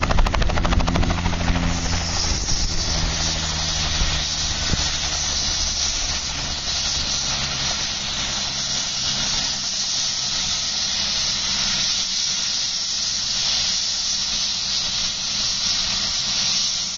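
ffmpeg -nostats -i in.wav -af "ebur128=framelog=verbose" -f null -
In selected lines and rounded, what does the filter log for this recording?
Integrated loudness:
  I:         -20.2 LUFS
  Threshold: -30.1 LUFS
Loudness range:
  LRA:         2.0 LU
  Threshold: -40.2 LUFS
  LRA low:   -21.2 LUFS
  LRA high:  -19.2 LUFS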